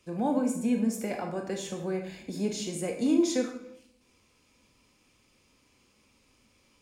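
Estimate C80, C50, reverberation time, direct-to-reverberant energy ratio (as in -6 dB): 10.5 dB, 7.0 dB, 0.70 s, 3.0 dB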